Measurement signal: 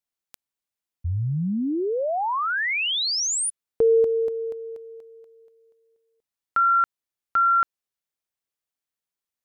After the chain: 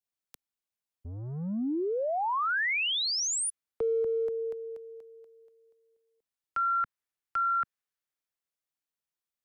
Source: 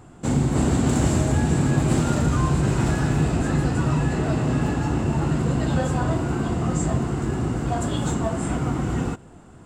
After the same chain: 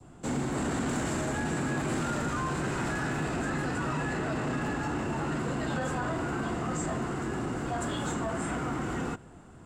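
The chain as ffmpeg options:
ffmpeg -i in.wav -filter_complex "[0:a]adynamicequalizer=threshold=0.0112:dfrequency=1600:dqfactor=1.1:tfrequency=1600:tqfactor=1.1:attack=5:release=100:ratio=0.375:range=3.5:mode=boostabove:tftype=bell,acrossover=split=210[link_01][link_02];[link_02]acompressor=threshold=-22dB:ratio=6:attack=0.27:release=55:knee=2.83:detection=peak[link_03];[link_01][link_03]amix=inputs=2:normalize=0,acrossover=split=210|630|4000[link_04][link_05][link_06][link_07];[link_04]asoftclip=type=tanh:threshold=-34.5dB[link_08];[link_08][link_05][link_06][link_07]amix=inputs=4:normalize=0,volume=-4.5dB" out.wav

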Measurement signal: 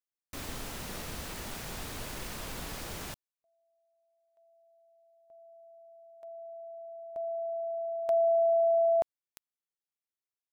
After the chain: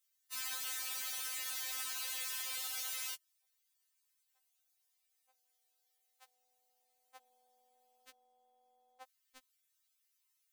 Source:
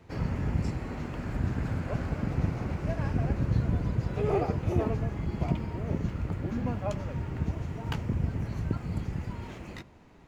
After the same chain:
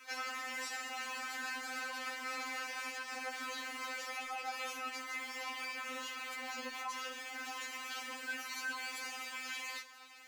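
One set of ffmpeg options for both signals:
ffmpeg -i in.wav -af "highpass=1400,highshelf=frequency=4200:gain=6,acompressor=threshold=-46dB:ratio=10:attack=0.57:release=48:knee=1:detection=peak,aeval=exprs='0.0119*(abs(mod(val(0)/0.0119+3,4)-2)-1)':channel_layout=same,afftfilt=real='re*3.46*eq(mod(b,12),0)':imag='im*3.46*eq(mod(b,12),0)':win_size=2048:overlap=0.75,volume=12.5dB" out.wav

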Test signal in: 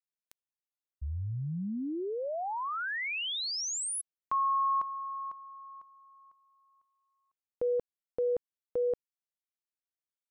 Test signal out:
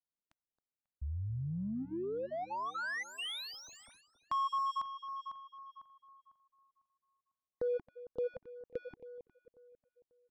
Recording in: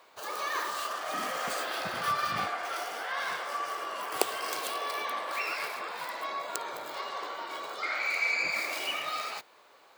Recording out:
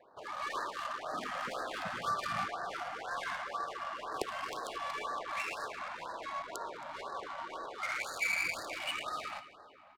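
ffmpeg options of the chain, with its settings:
ffmpeg -i in.wav -filter_complex "[0:a]highshelf=frequency=5500:gain=3,asplit=2[link_01][link_02];[link_02]acompressor=threshold=-48dB:ratio=4:attack=15:release=51:knee=6:detection=rms,volume=2.5dB[link_03];[link_01][link_03]amix=inputs=2:normalize=0,volume=16.5dB,asoftclip=hard,volume=-16.5dB,adynamicsmooth=sensitivity=4.5:basefreq=1000,asplit=2[link_04][link_05];[link_05]adelay=271,lowpass=frequency=4100:poles=1,volume=-15dB,asplit=2[link_06][link_07];[link_07]adelay=271,lowpass=frequency=4100:poles=1,volume=0.51,asplit=2[link_08][link_09];[link_09]adelay=271,lowpass=frequency=4100:poles=1,volume=0.51,asplit=2[link_10][link_11];[link_11]adelay=271,lowpass=frequency=4100:poles=1,volume=0.51,asplit=2[link_12][link_13];[link_13]adelay=271,lowpass=frequency=4100:poles=1,volume=0.51[link_14];[link_04][link_06][link_08][link_10][link_12][link_14]amix=inputs=6:normalize=0,afftfilt=real='re*(1-between(b*sr/1024,360*pow(2700/360,0.5+0.5*sin(2*PI*2*pts/sr))/1.41,360*pow(2700/360,0.5+0.5*sin(2*PI*2*pts/sr))*1.41))':imag='im*(1-between(b*sr/1024,360*pow(2700/360,0.5+0.5*sin(2*PI*2*pts/sr))/1.41,360*pow(2700/360,0.5+0.5*sin(2*PI*2*pts/sr))*1.41))':win_size=1024:overlap=0.75,volume=-5.5dB" out.wav

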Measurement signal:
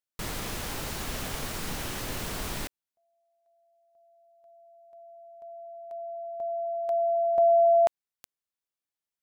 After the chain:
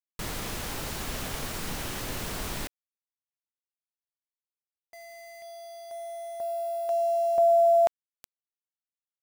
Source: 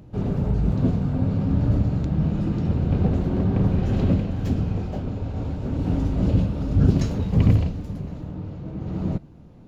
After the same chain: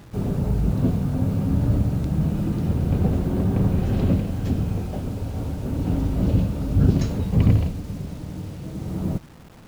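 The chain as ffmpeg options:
ffmpeg -i in.wav -af "acrusher=bits=7:mix=0:aa=0.000001" out.wav

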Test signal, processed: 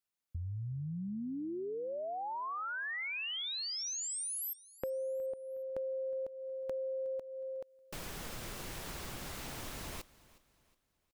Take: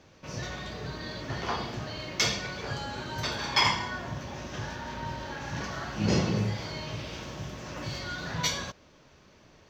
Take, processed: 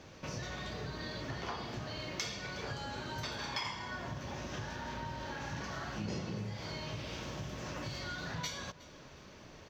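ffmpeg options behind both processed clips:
ffmpeg -i in.wav -filter_complex "[0:a]acompressor=threshold=-43dB:ratio=4,asplit=2[link_01][link_02];[link_02]aecho=0:1:365|730|1095:0.0944|0.0359|0.0136[link_03];[link_01][link_03]amix=inputs=2:normalize=0,volume=3.5dB" out.wav

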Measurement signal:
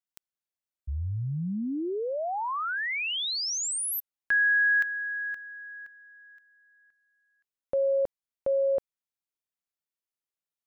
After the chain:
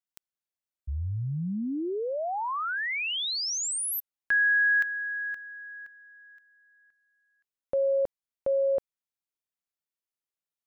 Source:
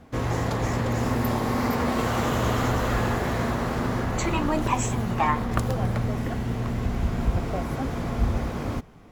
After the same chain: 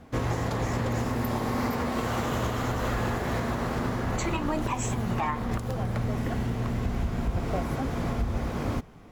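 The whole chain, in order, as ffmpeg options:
ffmpeg -i in.wav -af "alimiter=limit=-18.5dB:level=0:latency=1:release=250" out.wav

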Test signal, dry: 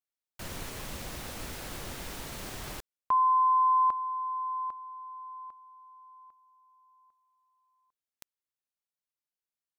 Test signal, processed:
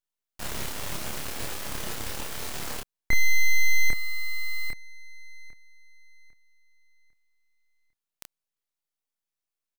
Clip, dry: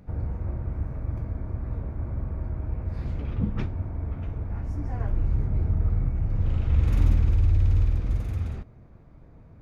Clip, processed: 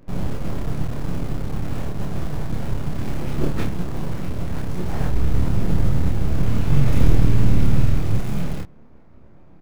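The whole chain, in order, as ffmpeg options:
ffmpeg -i in.wav -filter_complex "[0:a]aeval=exprs='abs(val(0))':channel_layout=same,asplit=2[link_01][link_02];[link_02]acrusher=bits=3:dc=4:mix=0:aa=0.000001,volume=-5dB[link_03];[link_01][link_03]amix=inputs=2:normalize=0,asplit=2[link_04][link_05];[link_05]adelay=28,volume=-2.5dB[link_06];[link_04][link_06]amix=inputs=2:normalize=0,volume=1.5dB" out.wav

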